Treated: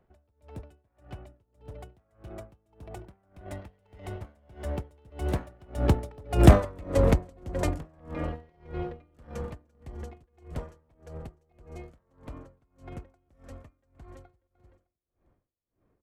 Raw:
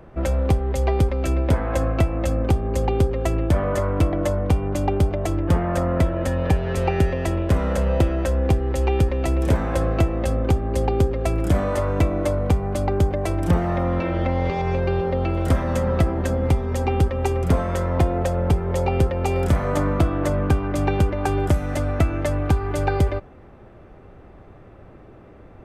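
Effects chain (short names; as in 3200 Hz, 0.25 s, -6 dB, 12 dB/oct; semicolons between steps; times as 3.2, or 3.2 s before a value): one-sided fold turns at -13 dBFS; Doppler pass-by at 10.61, 35 m/s, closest 18 m; in parallel at -6 dB: crossover distortion -38.5 dBFS; on the sum: feedback echo 0.482 s, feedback 37%, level -15 dB; tempo 1.6×; dB-linear tremolo 1.7 Hz, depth 31 dB; gain +5 dB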